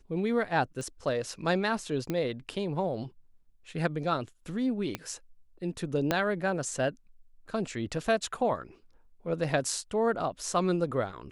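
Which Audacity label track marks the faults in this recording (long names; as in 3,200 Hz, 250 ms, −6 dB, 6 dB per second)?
0.810000	0.810000	click −27 dBFS
2.100000	2.100000	click −18 dBFS
4.950000	4.950000	click −17 dBFS
6.110000	6.110000	click −11 dBFS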